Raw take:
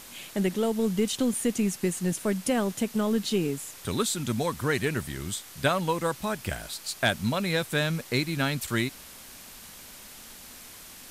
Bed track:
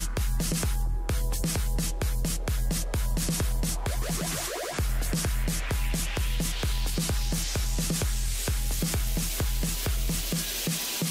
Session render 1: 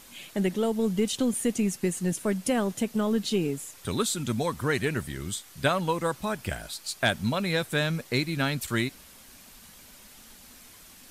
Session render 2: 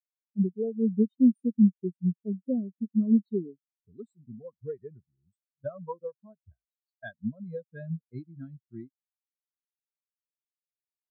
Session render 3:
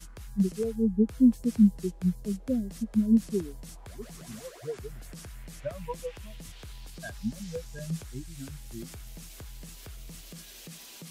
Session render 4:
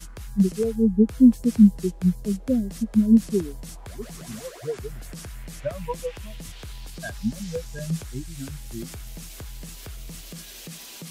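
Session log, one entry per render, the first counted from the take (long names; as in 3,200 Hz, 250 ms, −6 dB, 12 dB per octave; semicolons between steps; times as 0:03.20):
broadband denoise 6 dB, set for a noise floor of −47 dBFS
every bin expanded away from the loudest bin 4 to 1
mix in bed track −16.5 dB
level +6 dB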